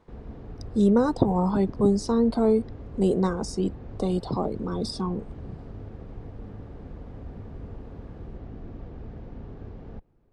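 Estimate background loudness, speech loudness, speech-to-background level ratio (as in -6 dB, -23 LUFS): -42.0 LUFS, -25.0 LUFS, 17.0 dB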